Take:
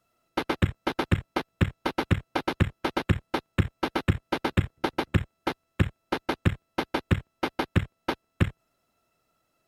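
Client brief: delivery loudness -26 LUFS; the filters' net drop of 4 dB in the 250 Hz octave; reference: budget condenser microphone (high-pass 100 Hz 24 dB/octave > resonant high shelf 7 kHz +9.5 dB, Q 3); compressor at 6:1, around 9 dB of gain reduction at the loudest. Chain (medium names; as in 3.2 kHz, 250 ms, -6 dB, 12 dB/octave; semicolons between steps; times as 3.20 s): peaking EQ 250 Hz -6 dB; compression 6:1, threshold -27 dBFS; high-pass 100 Hz 24 dB/octave; resonant high shelf 7 kHz +9.5 dB, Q 3; trim +10 dB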